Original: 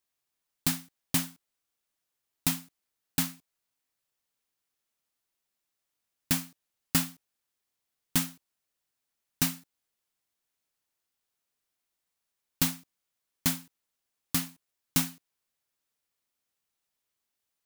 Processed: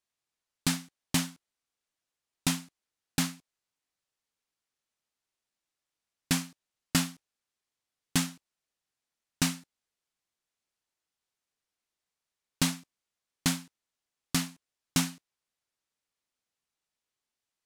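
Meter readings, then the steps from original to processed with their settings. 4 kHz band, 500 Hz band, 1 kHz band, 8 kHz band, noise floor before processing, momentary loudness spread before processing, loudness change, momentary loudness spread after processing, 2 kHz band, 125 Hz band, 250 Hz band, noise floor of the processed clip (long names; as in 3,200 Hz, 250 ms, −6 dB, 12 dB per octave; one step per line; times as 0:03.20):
+2.0 dB, +2.5 dB, +2.0 dB, 0.0 dB, −85 dBFS, 9 LU, −1.0 dB, 8 LU, +2.0 dB, +2.0 dB, +2.5 dB, below −85 dBFS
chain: low-pass filter 8,900 Hz 12 dB per octave
in parallel at −4.5 dB: gain into a clipping stage and back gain 30.5 dB
on the sum: noise gate −46 dBFS, range −6 dB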